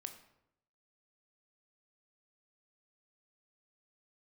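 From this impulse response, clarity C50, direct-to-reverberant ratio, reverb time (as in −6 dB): 10.0 dB, 6.5 dB, 0.80 s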